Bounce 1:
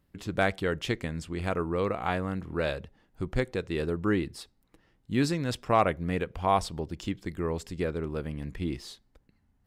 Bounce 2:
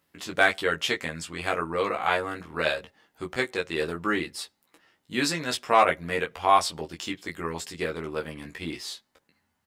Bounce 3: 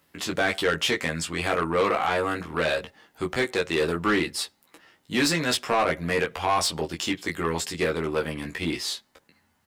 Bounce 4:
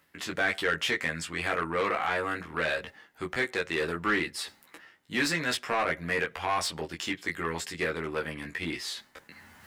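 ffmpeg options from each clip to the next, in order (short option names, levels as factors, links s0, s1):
-filter_complex "[0:a]highpass=f=970:p=1,asplit=2[s0][s1];[s1]aecho=0:1:13|24:0.668|0.501[s2];[s0][s2]amix=inputs=2:normalize=0,volume=2.11"
-filter_complex "[0:a]acrossover=split=400[s0][s1];[s1]alimiter=limit=0.126:level=0:latency=1:release=63[s2];[s0][s2]amix=inputs=2:normalize=0,asoftclip=type=tanh:threshold=0.0708,volume=2.24"
-af "equalizer=f=1800:t=o:w=1:g=7,areverse,acompressor=mode=upward:threshold=0.0316:ratio=2.5,areverse,volume=0.447"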